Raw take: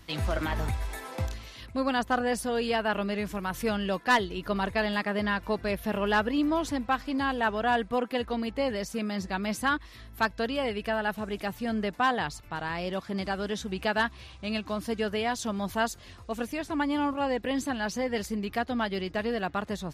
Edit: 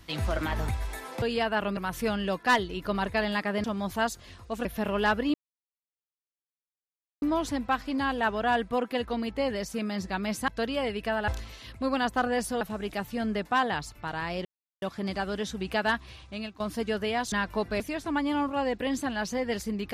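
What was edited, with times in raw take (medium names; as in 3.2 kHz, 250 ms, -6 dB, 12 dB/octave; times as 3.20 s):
1.22–2.55 s: move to 11.09 s
3.10–3.38 s: delete
5.25–5.73 s: swap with 15.43–16.44 s
6.42 s: insert silence 1.88 s
9.68–10.29 s: delete
12.93 s: insert silence 0.37 s
14.14–14.71 s: fade out equal-power, to -15.5 dB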